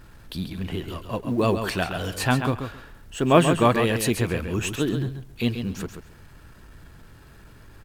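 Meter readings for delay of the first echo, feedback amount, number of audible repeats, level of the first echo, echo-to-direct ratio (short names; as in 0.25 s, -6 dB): 0.135 s, 17%, 2, -8.0 dB, -8.0 dB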